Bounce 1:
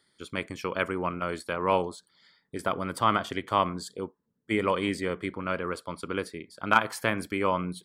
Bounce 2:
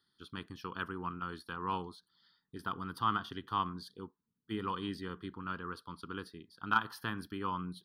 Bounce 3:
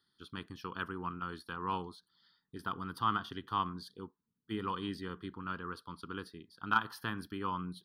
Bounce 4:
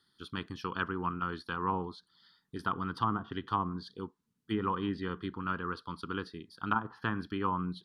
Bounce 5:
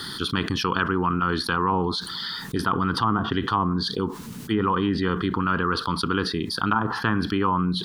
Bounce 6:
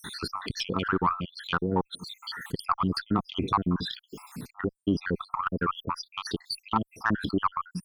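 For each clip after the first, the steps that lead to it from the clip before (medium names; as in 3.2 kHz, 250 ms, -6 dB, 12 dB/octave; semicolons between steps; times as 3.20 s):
static phaser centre 2.2 kHz, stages 6; trim -6.5 dB
no audible change
low-pass that closes with the level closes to 790 Hz, closed at -30 dBFS; trim +5.5 dB
level flattener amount 70%; trim +6 dB
random holes in the spectrogram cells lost 75%; Chebyshev shaper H 2 -15 dB, 4 -20 dB, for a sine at -8.5 dBFS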